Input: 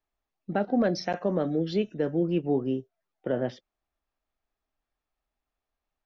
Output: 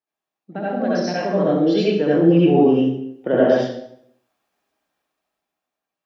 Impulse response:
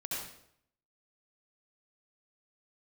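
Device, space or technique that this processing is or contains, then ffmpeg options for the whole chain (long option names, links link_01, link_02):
far laptop microphone: -filter_complex "[1:a]atrim=start_sample=2205[link_01];[0:a][link_01]afir=irnorm=-1:irlink=0,highpass=190,dynaudnorm=framelen=310:gausssize=9:maxgain=15dB"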